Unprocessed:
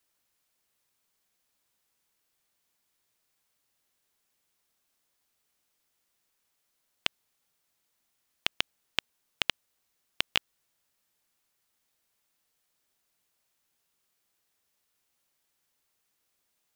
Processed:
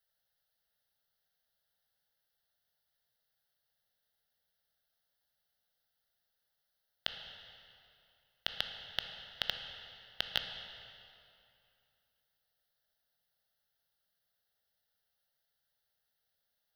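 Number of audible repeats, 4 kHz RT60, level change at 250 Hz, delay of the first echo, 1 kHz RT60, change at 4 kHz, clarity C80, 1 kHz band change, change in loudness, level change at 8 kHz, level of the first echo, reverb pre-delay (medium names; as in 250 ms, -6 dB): no echo, 2.2 s, -10.5 dB, no echo, 2.6 s, -4.5 dB, 7.0 dB, -6.5 dB, -7.0 dB, -12.5 dB, no echo, 15 ms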